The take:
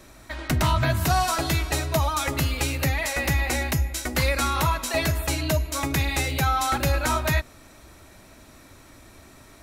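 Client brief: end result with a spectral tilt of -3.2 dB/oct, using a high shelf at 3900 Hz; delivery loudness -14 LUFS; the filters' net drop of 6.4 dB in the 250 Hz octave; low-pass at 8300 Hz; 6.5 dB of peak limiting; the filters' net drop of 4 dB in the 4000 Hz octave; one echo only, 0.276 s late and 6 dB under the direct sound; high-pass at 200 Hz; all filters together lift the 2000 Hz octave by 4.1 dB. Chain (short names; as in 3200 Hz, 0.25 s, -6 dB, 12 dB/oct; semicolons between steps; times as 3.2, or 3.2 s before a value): HPF 200 Hz; LPF 8300 Hz; bell 250 Hz -6 dB; bell 2000 Hz +7 dB; high shelf 3900 Hz -5 dB; bell 4000 Hz -4 dB; limiter -17 dBFS; echo 0.276 s -6 dB; gain +12 dB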